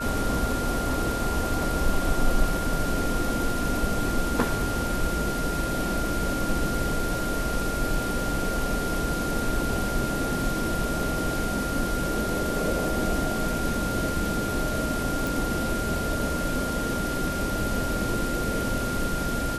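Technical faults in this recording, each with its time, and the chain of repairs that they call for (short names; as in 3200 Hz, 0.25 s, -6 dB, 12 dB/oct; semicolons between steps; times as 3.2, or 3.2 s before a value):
tone 1400 Hz -31 dBFS
15.27 pop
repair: de-click; notch 1400 Hz, Q 30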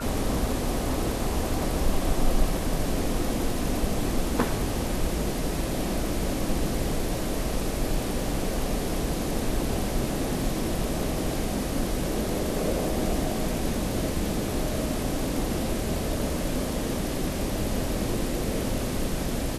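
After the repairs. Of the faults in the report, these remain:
none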